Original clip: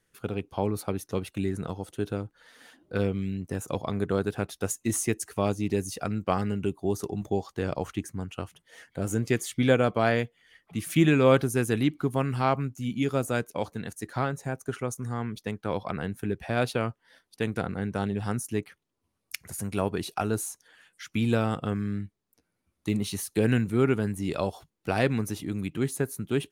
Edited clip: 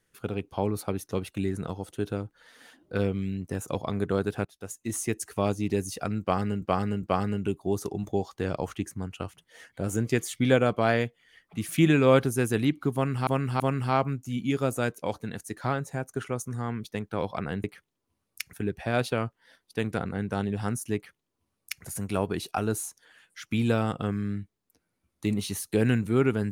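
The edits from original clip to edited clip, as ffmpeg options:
ffmpeg -i in.wav -filter_complex "[0:a]asplit=8[link_01][link_02][link_03][link_04][link_05][link_06][link_07][link_08];[link_01]atrim=end=4.45,asetpts=PTS-STARTPTS,afade=type=out:start_time=4.446:duration=0.004:curve=hsin:silence=0.112202[link_09];[link_02]atrim=start=4.45:end=6.622,asetpts=PTS-STARTPTS,afade=type=in:duration=0.84:silence=0.112202[link_10];[link_03]atrim=start=6.208:end=6.622[link_11];[link_04]atrim=start=6.208:end=12.452[link_12];[link_05]atrim=start=12.118:end=12.452[link_13];[link_06]atrim=start=12.118:end=16.162[link_14];[link_07]atrim=start=18.578:end=19.472[link_15];[link_08]atrim=start=16.158[link_16];[link_09][link_10]concat=n=2:v=0:a=1[link_17];[link_17][link_11]acrossfade=duration=0.004:curve1=hsin:curve2=hsin[link_18];[link_18][link_12]acrossfade=duration=0.004:curve1=hsin:curve2=hsin[link_19];[link_19][link_13]acrossfade=duration=0.004:curve1=hsin:curve2=hsin[link_20];[link_20][link_14]acrossfade=duration=0.004:curve1=hsin:curve2=hsin[link_21];[link_21][link_15]acrossfade=duration=0.004:curve1=hsin:curve2=hsin[link_22];[link_22][link_16]acrossfade=duration=0.004:curve1=hsin:curve2=hsin" out.wav

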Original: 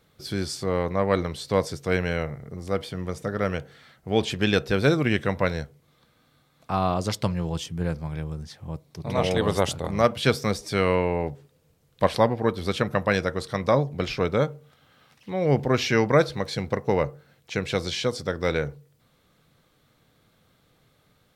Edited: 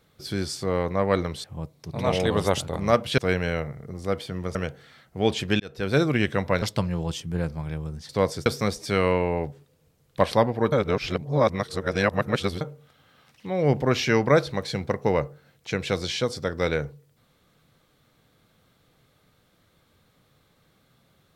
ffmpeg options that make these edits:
ffmpeg -i in.wav -filter_complex "[0:a]asplit=10[link_01][link_02][link_03][link_04][link_05][link_06][link_07][link_08][link_09][link_10];[link_01]atrim=end=1.442[link_11];[link_02]atrim=start=8.548:end=10.292[link_12];[link_03]atrim=start=1.808:end=3.182[link_13];[link_04]atrim=start=3.458:end=4.51,asetpts=PTS-STARTPTS,afade=type=out:start_time=1.048:duration=0.004:curve=hsin[link_14];[link_05]atrim=start=4.51:end=5.532,asetpts=PTS-STARTPTS,afade=type=in:duration=0.42[link_15];[link_06]atrim=start=7.078:end=8.552[link_16];[link_07]atrim=start=1.438:end=1.812[link_17];[link_08]atrim=start=10.288:end=12.552[link_18];[link_09]atrim=start=12.548:end=14.442,asetpts=PTS-STARTPTS,areverse[link_19];[link_10]atrim=start=14.438[link_20];[link_11][link_12]acrossfade=duration=0.004:curve1=hsin:curve2=hsin[link_21];[link_21][link_13]acrossfade=duration=0.004:curve1=hsin:curve2=hsin[link_22];[link_14][link_15]concat=n=2:v=0:a=1[link_23];[link_22][link_23]acrossfade=duration=0.004:curve1=hsin:curve2=hsin[link_24];[link_24][link_16]acrossfade=duration=0.004:curve1=hsin:curve2=hsin[link_25];[link_25][link_17]acrossfade=duration=0.004:curve1=hsin:curve2=hsin[link_26];[link_26][link_18]acrossfade=duration=0.004:curve1=hsin:curve2=hsin[link_27];[link_27][link_19]acrossfade=duration=0.004:curve1=hsin:curve2=hsin[link_28];[link_28][link_20]acrossfade=duration=0.004:curve1=hsin:curve2=hsin" out.wav

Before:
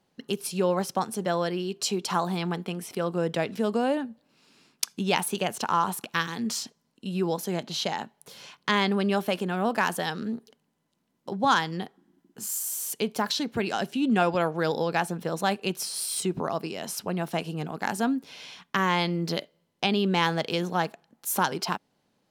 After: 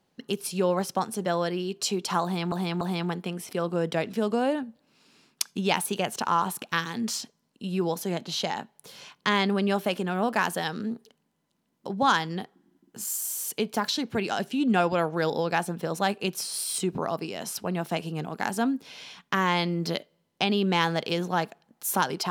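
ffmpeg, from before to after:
ffmpeg -i in.wav -filter_complex "[0:a]asplit=3[link_01][link_02][link_03];[link_01]atrim=end=2.522[link_04];[link_02]atrim=start=2.228:end=2.522[link_05];[link_03]atrim=start=2.228[link_06];[link_04][link_05]acrossfade=duration=0.004:curve1=hsin:curve2=hsin[link_07];[link_07][link_06]acrossfade=duration=0.004:curve1=hsin:curve2=hsin" out.wav

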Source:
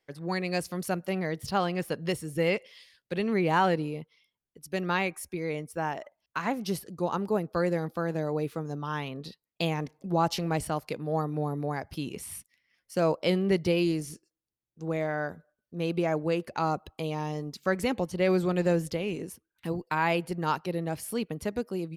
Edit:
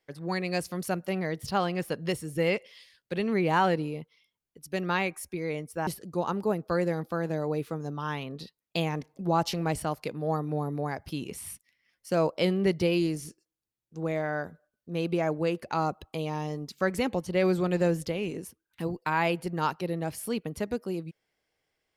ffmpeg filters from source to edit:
ffmpeg -i in.wav -filter_complex "[0:a]asplit=2[link_01][link_02];[link_01]atrim=end=5.872[link_03];[link_02]atrim=start=6.718[link_04];[link_03][link_04]acrossfade=duration=0.004:curve1=hsin:curve2=hsin" out.wav

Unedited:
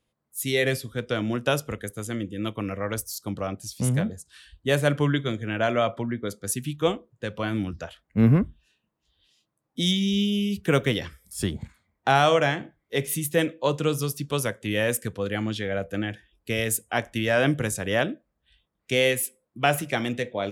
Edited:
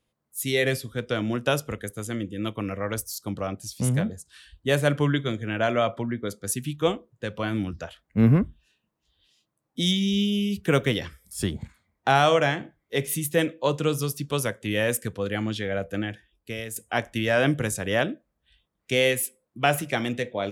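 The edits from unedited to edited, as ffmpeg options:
ffmpeg -i in.wav -filter_complex "[0:a]asplit=2[link_01][link_02];[link_01]atrim=end=16.76,asetpts=PTS-STARTPTS,afade=type=out:start_time=15.96:duration=0.8:silence=0.266073[link_03];[link_02]atrim=start=16.76,asetpts=PTS-STARTPTS,afade=type=in:duration=0.004:curve=hsin:silence=0.266073[link_04];[link_03][link_04]concat=n=2:v=0:a=1" out.wav

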